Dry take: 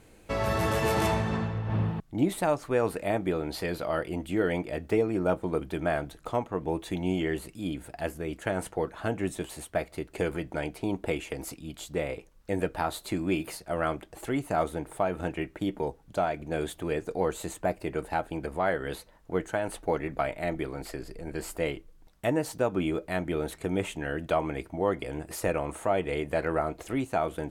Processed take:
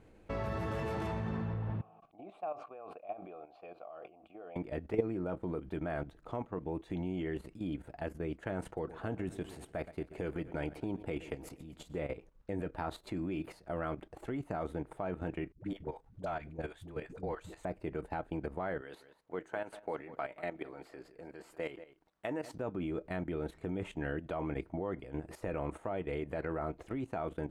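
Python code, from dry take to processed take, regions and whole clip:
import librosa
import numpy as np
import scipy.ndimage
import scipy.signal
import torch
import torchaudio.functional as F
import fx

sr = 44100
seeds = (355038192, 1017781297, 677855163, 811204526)

y = fx.chain(x, sr, fx.vowel_filter(vowel='a'),
    fx.sustainer(db_per_s=100.0), at=(1.81, 4.56))
y = fx.chain(y, sr, fx.high_shelf(hz=8500.0, db=5.0),
    fx.echo_feedback(ms=122, feedback_pct=53, wet_db=-17), at=(8.65, 11.99))
y = fx.chain(y, sr, fx.peak_eq(hz=350.0, db=-7.0, octaves=2.6),
    fx.dispersion(late='highs', ms=90.0, hz=340.0), at=(15.52, 17.65))
y = fx.chain(y, sr, fx.highpass(hz=580.0, slope=6),
    fx.echo_single(ms=190, db=-16.0), at=(18.81, 22.53))
y = fx.lowpass(y, sr, hz=1400.0, slope=6)
y = fx.dynamic_eq(y, sr, hz=690.0, q=1.0, threshold_db=-38.0, ratio=4.0, max_db=-3)
y = fx.level_steps(y, sr, step_db=12)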